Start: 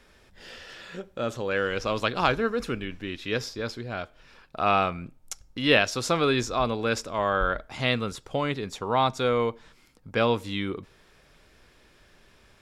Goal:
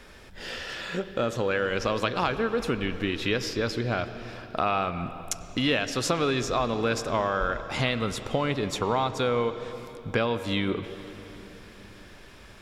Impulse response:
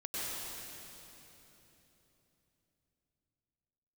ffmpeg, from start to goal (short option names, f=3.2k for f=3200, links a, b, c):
-filter_complex "[0:a]acompressor=threshold=-32dB:ratio=5,asplit=2[a][b];[1:a]atrim=start_sample=2205,lowpass=4.4k[c];[b][c]afir=irnorm=-1:irlink=0,volume=-13.5dB[d];[a][d]amix=inputs=2:normalize=0,volume=7.5dB"